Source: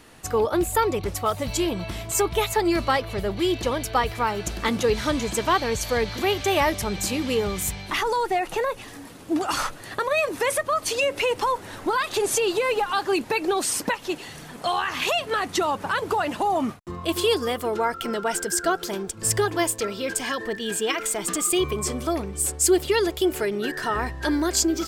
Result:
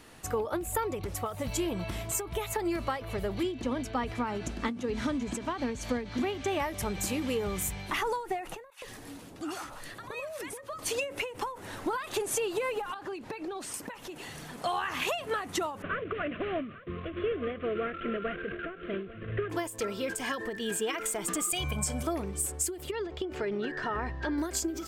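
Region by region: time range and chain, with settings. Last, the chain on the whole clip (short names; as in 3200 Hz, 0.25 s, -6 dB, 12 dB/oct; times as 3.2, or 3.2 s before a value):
3.43–6.6 LPF 7600 Hz + bell 250 Hz +14.5 dB 0.35 oct + tremolo triangle 3.3 Hz, depth 45%
8.7–10.79 compressor 2.5:1, threshold -36 dBFS + bands offset in time highs, lows 0.12 s, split 1000 Hz
12.94–13.74 LPF 3500 Hz 6 dB/oct + compressor 8:1, threshold -31 dBFS
15.82–19.5 CVSD 16 kbps + Butterworth band-stop 870 Hz, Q 1.8 + echo 0.846 s -19 dB
21.51–22.03 dynamic EQ 6800 Hz, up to +5 dB, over -39 dBFS, Q 0.89 + comb 1.3 ms, depth 89%
22.91–24.38 air absorption 160 m + compressor 3:1, threshold -24 dBFS
whole clip: dynamic EQ 4500 Hz, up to -6 dB, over -45 dBFS, Q 1.4; compressor, threshold -24 dBFS; ending taper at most 110 dB/s; gain -3 dB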